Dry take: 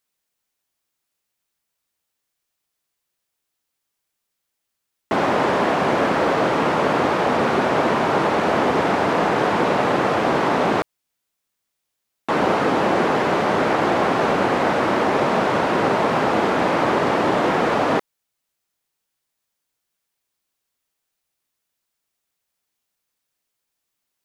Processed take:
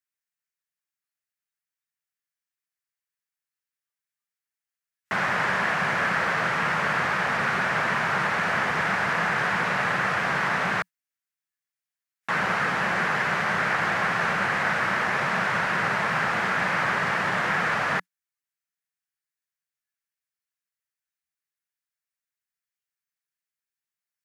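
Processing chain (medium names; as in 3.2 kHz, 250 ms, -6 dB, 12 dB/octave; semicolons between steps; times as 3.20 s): high-pass 130 Hz 6 dB/octave; spectral noise reduction 11 dB; FFT filter 180 Hz 0 dB, 280 Hz -17 dB, 960 Hz -5 dB, 1.7 kHz +7 dB, 3.5 kHz -3 dB, 5.3 kHz 0 dB; trim -2.5 dB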